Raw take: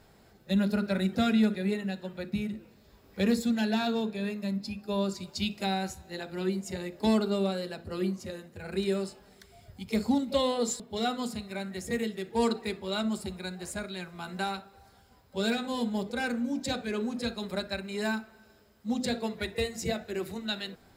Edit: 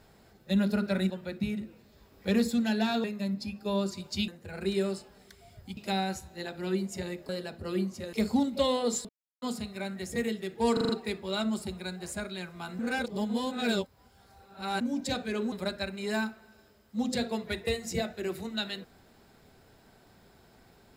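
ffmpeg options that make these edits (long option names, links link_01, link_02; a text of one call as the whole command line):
ffmpeg -i in.wav -filter_complex "[0:a]asplit=16[link_01][link_02][link_03][link_04][link_05][link_06][link_07][link_08][link_09][link_10][link_11][link_12][link_13][link_14][link_15][link_16];[link_01]atrim=end=1.102[link_17];[link_02]atrim=start=2.018:end=3.962[link_18];[link_03]atrim=start=4.268:end=5.512[link_19];[link_04]atrim=start=8.388:end=9.882[link_20];[link_05]atrim=start=5.508:end=7.032[link_21];[link_06]atrim=start=7.548:end=8.392[link_22];[link_07]atrim=start=9.878:end=10.84,asetpts=PTS-STARTPTS,afade=type=out:start_time=0.958:duration=0.004:curve=hsin[link_23];[link_08]atrim=start=10.84:end=11.17,asetpts=PTS-STARTPTS,volume=0[link_24];[link_09]atrim=start=11.17:end=12.522,asetpts=PTS-STARTPTS,afade=type=in:duration=0.004:curve=hsin[link_25];[link_10]atrim=start=12.478:end=12.522[link_26];[link_11]atrim=start=12.478:end=12.522[link_27];[link_12]atrim=start=12.478:end=12.522[link_28];[link_13]atrim=start=12.478:end=14.382[link_29];[link_14]atrim=start=14.378:end=16.402,asetpts=PTS-STARTPTS,areverse[link_30];[link_15]atrim=start=16.398:end=17.112[link_31];[link_16]atrim=start=17.428[link_32];[link_17][link_18]acrossfade=duration=0.004:curve1=hsin:curve2=hsin[link_33];[link_33][link_19]acrossfade=duration=0.004:curve1=hsin:curve2=hsin[link_34];[link_34][link_20]acrossfade=duration=0.004:curve1=hsin:curve2=hsin[link_35];[link_35][link_21]acrossfade=duration=0.004:curve1=hsin:curve2=hsin[link_36];[link_36][link_22]acrossfade=duration=0.004:curve1=hsin:curve2=hsin[link_37];[link_23][link_24][link_25]concat=n=3:v=0:a=1[link_38];[link_37][link_38]acrossfade=duration=0.004:curve1=hsin:curve2=hsin[link_39];[link_39][link_26]acrossfade=duration=0.004:curve1=hsin:curve2=hsin[link_40];[link_40][link_27]acrossfade=duration=0.004:curve1=hsin:curve2=hsin[link_41];[link_41][link_28]acrossfade=duration=0.004:curve1=hsin:curve2=hsin[link_42];[link_42][link_29]acrossfade=duration=0.004:curve1=hsin:curve2=hsin[link_43];[link_43][link_30]acrossfade=duration=0.004:curve1=hsin:curve2=hsin[link_44];[link_44][link_31]acrossfade=duration=0.004:curve1=hsin:curve2=hsin[link_45];[link_45][link_32]acrossfade=duration=0.004:curve1=hsin:curve2=hsin" out.wav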